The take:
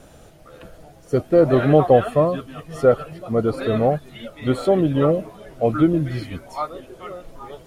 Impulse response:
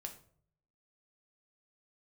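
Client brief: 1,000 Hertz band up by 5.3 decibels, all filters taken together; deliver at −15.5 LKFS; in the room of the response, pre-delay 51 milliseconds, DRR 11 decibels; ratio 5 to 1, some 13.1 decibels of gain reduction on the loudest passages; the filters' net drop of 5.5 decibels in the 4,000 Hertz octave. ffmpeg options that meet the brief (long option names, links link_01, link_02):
-filter_complex "[0:a]equalizer=frequency=1000:width_type=o:gain=8.5,equalizer=frequency=4000:width_type=o:gain=-8,acompressor=threshold=-22dB:ratio=5,asplit=2[link_01][link_02];[1:a]atrim=start_sample=2205,adelay=51[link_03];[link_02][link_03]afir=irnorm=-1:irlink=0,volume=-7.5dB[link_04];[link_01][link_04]amix=inputs=2:normalize=0,volume=12dB"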